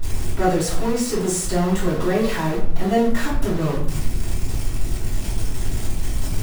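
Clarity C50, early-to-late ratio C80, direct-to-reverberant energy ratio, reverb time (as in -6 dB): 5.0 dB, 9.0 dB, -8.0 dB, 0.55 s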